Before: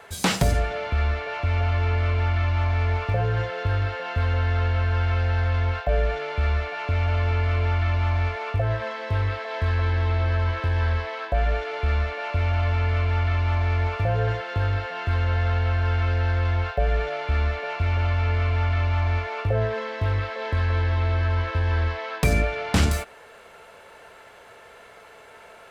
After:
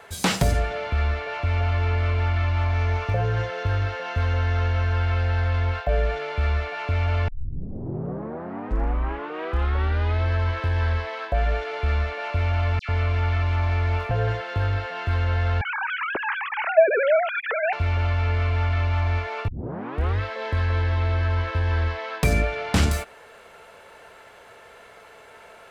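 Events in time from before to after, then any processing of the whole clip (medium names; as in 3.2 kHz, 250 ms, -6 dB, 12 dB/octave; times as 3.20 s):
2.74–4.93 s: peaking EQ 6 kHz +6.5 dB 0.2 oct
7.28 s: tape start 2.96 s
12.79–14.11 s: phase dispersion lows, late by 98 ms, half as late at 1.8 kHz
15.61–17.73 s: formants replaced by sine waves
19.48 s: tape start 0.72 s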